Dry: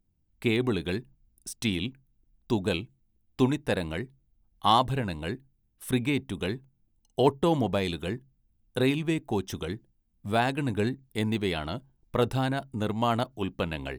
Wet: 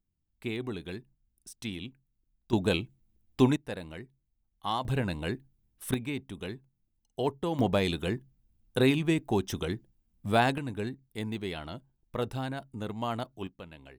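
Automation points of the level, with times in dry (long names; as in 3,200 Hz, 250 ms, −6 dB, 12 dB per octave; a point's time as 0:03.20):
−9 dB
from 0:02.53 +1 dB
from 0:03.56 −10 dB
from 0:04.85 0 dB
from 0:05.94 −7.5 dB
from 0:07.59 +1 dB
from 0:10.58 −7 dB
from 0:13.47 −16 dB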